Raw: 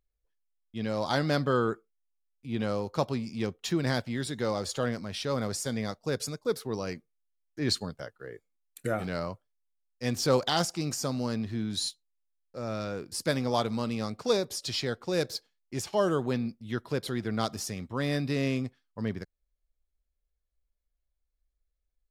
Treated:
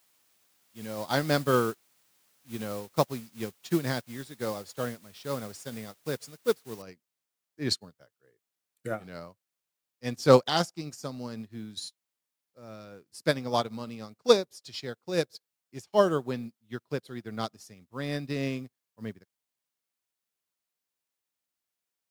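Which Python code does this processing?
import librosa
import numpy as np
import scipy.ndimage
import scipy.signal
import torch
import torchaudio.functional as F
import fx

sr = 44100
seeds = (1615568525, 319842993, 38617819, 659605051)

y = fx.noise_floor_step(x, sr, seeds[0], at_s=6.82, before_db=-43, after_db=-61, tilt_db=0.0)
y = scipy.signal.sosfilt(scipy.signal.butter(2, 85.0, 'highpass', fs=sr, output='sos'), y)
y = fx.upward_expand(y, sr, threshold_db=-44.0, expansion=2.5)
y = F.gain(torch.from_numpy(y), 8.0).numpy()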